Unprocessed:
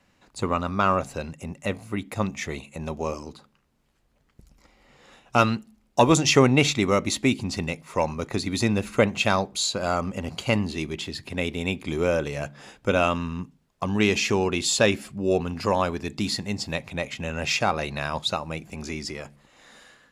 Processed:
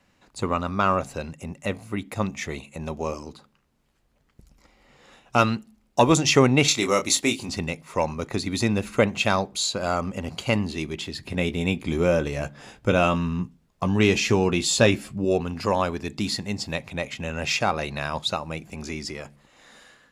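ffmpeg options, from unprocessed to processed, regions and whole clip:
ffmpeg -i in.wav -filter_complex "[0:a]asettb=1/sr,asplit=3[link_01][link_02][link_03];[link_01]atrim=end=6.684[link_04];[link_02]atrim=start=6.68:end=7.49,asetpts=PTS-STARTPTS,afade=type=in:duration=0.004:curve=qsin,afade=type=out:start_time=0.806:duration=0.004:curve=qsin,bass=frequency=250:gain=-9,treble=frequency=4000:gain=8,asplit=2[link_05][link_06];[link_06]adelay=26,volume=-7dB[link_07];[link_05][link_07]amix=inputs=2:normalize=0,atrim=end_sample=35721[link_08];[link_03]atrim=start=7.486[link_09];[link_04][link_08]acrossfade=duration=0.004:curve1=hsin:curve2=qsin[link_10];[link_10][link_09]acrossfade=duration=0.004:curve1=qsin:curve2=hsin,asettb=1/sr,asplit=3[link_11][link_12][link_13];[link_11]atrim=end=11.214[link_14];[link_12]atrim=start=11.21:end=15.25,asetpts=PTS-STARTPTS,afade=type=in:duration=0.004:curve=qsin,afade=type=out:start_time=4.036:duration=0.004:curve=qsin,lowshelf=frequency=240:gain=6.5,asplit=2[link_15][link_16];[link_16]adelay=17,volume=-9dB[link_17];[link_15][link_17]amix=inputs=2:normalize=0,atrim=end_sample=178164[link_18];[link_13]atrim=start=15.246[link_19];[link_14][link_18]acrossfade=duration=0.004:curve1=hsin:curve2=qsin[link_20];[link_20][link_19]acrossfade=duration=0.004:curve1=qsin:curve2=hsin" out.wav

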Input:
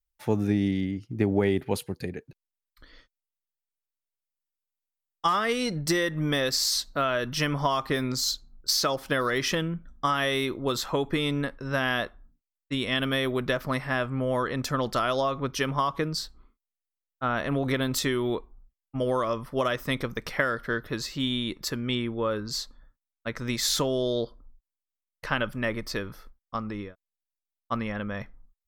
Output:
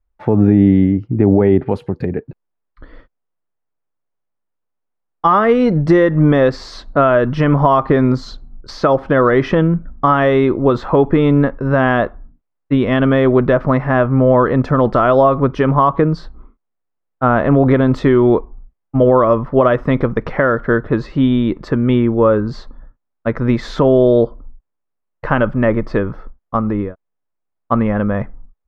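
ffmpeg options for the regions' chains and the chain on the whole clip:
ffmpeg -i in.wav -filter_complex "[0:a]asettb=1/sr,asplit=3[link_01][link_02][link_03];[link_01]atrim=end=1.654[link_04];[link_02]atrim=start=1.65:end=2.11,asetpts=PTS-STARTPTS,afade=type=in:duration=0.004:curve=qsin,afade=type=out:start_time=0.456:duration=0.004:curve=qsin,aemphasis=mode=production:type=cd,acompressor=threshold=-31dB:ratio=2:attack=3.2:release=140:knee=1:detection=peak[link_05];[link_03]atrim=start=2.106[link_06];[link_04][link_05]acrossfade=duration=0.004:curve1=hsin:curve2=qsin[link_07];[link_07][link_06]acrossfade=duration=0.004:curve1=qsin:curve2=hsin,lowpass=1100,alimiter=level_in=17.5dB:limit=-1dB:release=50:level=0:latency=1,volume=-1dB" out.wav

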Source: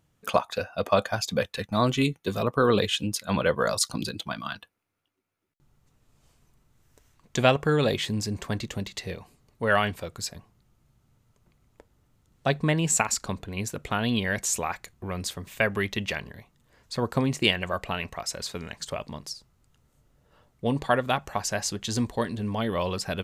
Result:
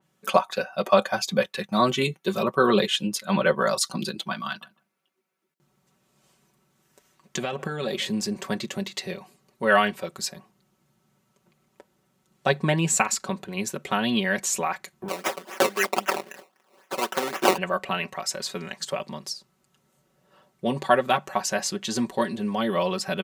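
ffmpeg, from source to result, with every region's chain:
ffmpeg -i in.wav -filter_complex "[0:a]asettb=1/sr,asplit=3[link_01][link_02][link_03];[link_01]atrim=end=4.464[link_04];[link_02]atrim=start=4.46:end=8.11,asetpts=PTS-STARTPTS,afade=type=in:duration=0.004:curve=qsin,afade=type=out:start_time=3.646:duration=0.004:curve=qsin,acompressor=threshold=-26dB:ratio=16:attack=3.2:release=140:knee=1:detection=peak,asplit=2[link_05][link_06];[link_06]adelay=150,lowpass=frequency=880:poles=1,volume=-17dB,asplit=2[link_07][link_08];[link_08]adelay=150,lowpass=frequency=880:poles=1,volume=0.18[link_09];[link_05][link_07][link_09]amix=inputs=3:normalize=0,atrim=end_sample=160965[link_10];[link_03]atrim=start=8.106[link_11];[link_04][link_10]acrossfade=duration=0.004:curve1=hsin:curve2=qsin[link_12];[link_12][link_11]acrossfade=duration=0.004:curve1=qsin:curve2=hsin,asettb=1/sr,asplit=3[link_13][link_14][link_15];[link_13]atrim=end=15.084[link_16];[link_14]atrim=start=15.08:end=17.58,asetpts=PTS-STARTPTS,afade=type=in:duration=0.004:curve=qsin,afade=type=out:start_time=2.496:duration=0.004:curve=qsin,tiltshelf=frequency=720:gain=-5,acrusher=samples=19:mix=1:aa=0.000001:lfo=1:lforange=19:lforate=3.8,highpass=320[link_17];[link_15]atrim=start=17.576[link_18];[link_16][link_17]acrossfade=duration=0.004:curve1=hsin:curve2=qsin[link_19];[link_19][link_18]acrossfade=duration=0.004:curve1=qsin:curve2=hsin,highpass=180,aecho=1:1:5.3:0.73,adynamicequalizer=threshold=0.0126:dfrequency=3700:dqfactor=0.7:tfrequency=3700:tqfactor=0.7:attack=5:release=100:ratio=0.375:range=2:mode=cutabove:tftype=highshelf,volume=1.5dB" out.wav

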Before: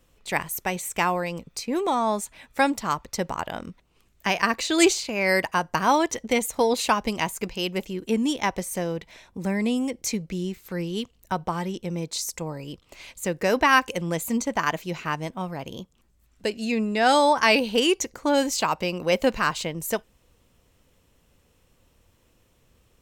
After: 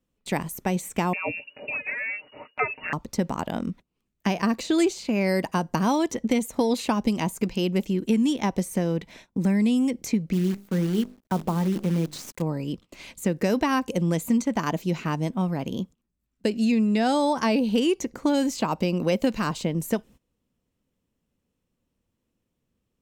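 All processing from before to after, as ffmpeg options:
ffmpeg -i in.wav -filter_complex "[0:a]asettb=1/sr,asplit=3[link_01][link_02][link_03];[link_01]atrim=end=1.134[link_04];[link_02]atrim=start=1.13:end=2.93,asetpts=PTS-STARTPTS,afade=type=in:duration=0.004:curve=qsin,afade=type=out:start_time=1.796:duration=0.004:curve=qsin,aecho=1:1:6.1:0.95,atrim=end_sample=79380,lowpass=frequency=2500:width_type=q:width=0.5098,lowpass=frequency=2500:width_type=q:width=0.6013,lowpass=frequency=2500:width_type=q:width=0.9,lowpass=frequency=2500:width_type=q:width=2.563,afreqshift=-2900,equalizer=frequency=570:width_type=o:width=0.22:gain=10.5[link_05];[link_03]atrim=start=2.926[link_06];[link_04][link_05]acrossfade=duration=0.004:curve1=hsin:curve2=qsin[link_07];[link_07][link_06]acrossfade=duration=0.004:curve1=qsin:curve2=hsin,asettb=1/sr,asplit=3[link_08][link_09][link_10];[link_08]atrim=end=10.334[link_11];[link_09]atrim=start=10.33:end=12.42,asetpts=PTS-STARTPTS,afade=type=in:duration=0.004:curve=qsin,afade=type=out:start_time=2.086:duration=0.004:curve=qsin,highshelf=frequency=2500:gain=-9.5,bandreject=frequency=50:width_type=h:width=6,bandreject=frequency=100:width_type=h:width=6,bandreject=frequency=150:width_type=h:width=6,bandreject=frequency=200:width_type=h:width=6,bandreject=frequency=250:width_type=h:width=6,bandreject=frequency=300:width_type=h:width=6,bandreject=frequency=350:width_type=h:width=6,bandreject=frequency=400:width_type=h:width=6,acrusher=bits=7:dc=4:mix=0:aa=0.000001[link_12];[link_10]atrim=start=12.416[link_13];[link_11][link_12]acrossfade=duration=0.004:curve1=hsin:curve2=qsin[link_14];[link_14][link_13]acrossfade=duration=0.004:curve1=qsin:curve2=hsin,agate=range=-19dB:threshold=-48dB:ratio=16:detection=peak,equalizer=frequency=220:width_type=o:width=1.4:gain=11,acrossover=split=1100|2800[link_15][link_16][link_17];[link_15]acompressor=threshold=-20dB:ratio=4[link_18];[link_16]acompressor=threshold=-40dB:ratio=4[link_19];[link_17]acompressor=threshold=-36dB:ratio=4[link_20];[link_18][link_19][link_20]amix=inputs=3:normalize=0" out.wav

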